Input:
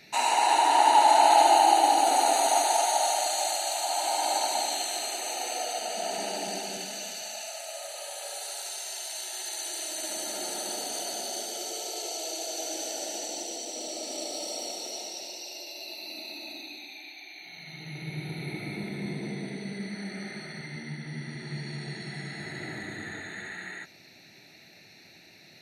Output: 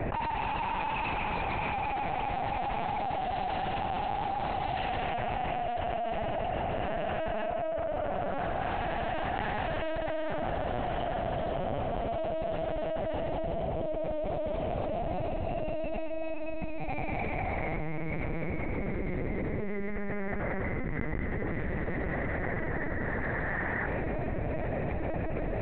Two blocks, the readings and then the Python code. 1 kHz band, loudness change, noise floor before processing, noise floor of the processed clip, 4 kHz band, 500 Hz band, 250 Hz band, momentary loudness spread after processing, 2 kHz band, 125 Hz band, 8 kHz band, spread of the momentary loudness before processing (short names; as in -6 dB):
-7.0 dB, -5.5 dB, -54 dBFS, -33 dBFS, -14.5 dB, +1.5 dB, +3.5 dB, 3 LU, +0.5 dB, +6.5 dB, under -40 dB, 18 LU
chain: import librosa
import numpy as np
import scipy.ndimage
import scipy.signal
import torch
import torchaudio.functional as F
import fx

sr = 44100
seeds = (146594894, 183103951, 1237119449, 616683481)

y = fx.env_lowpass(x, sr, base_hz=700.0, full_db=-21.5)
y = 10.0 ** (-21.0 / 20.0) * (np.abs((y / 10.0 ** (-21.0 / 20.0) + 3.0) % 4.0 - 2.0) - 1.0)
y = fx.bandpass_edges(y, sr, low_hz=260.0, high_hz=2300.0)
y = fx.rev_schroeder(y, sr, rt60_s=1.6, comb_ms=32, drr_db=18.0)
y = fx.lpc_vocoder(y, sr, seeds[0], excitation='pitch_kept', order=8)
y = fx.env_flatten(y, sr, amount_pct=100)
y = F.gain(torch.from_numpy(y), -6.5).numpy()